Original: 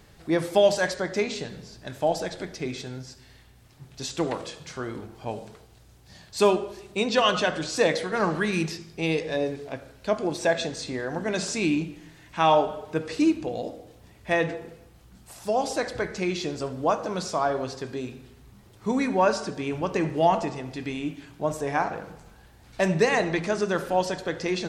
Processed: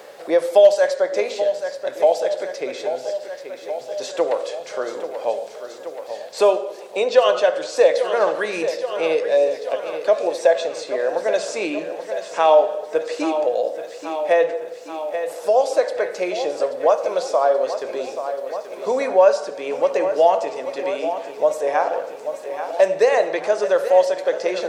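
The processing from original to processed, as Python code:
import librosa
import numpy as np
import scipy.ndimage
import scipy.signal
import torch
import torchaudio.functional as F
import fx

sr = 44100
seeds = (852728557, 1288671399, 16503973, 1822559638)

p1 = fx.highpass_res(x, sr, hz=540.0, q=5.0)
p2 = fx.quant_dither(p1, sr, seeds[0], bits=12, dither='none')
p3 = p2 + fx.echo_feedback(p2, sr, ms=831, feedback_pct=60, wet_db=-13.5, dry=0)
y = fx.band_squash(p3, sr, depth_pct=40)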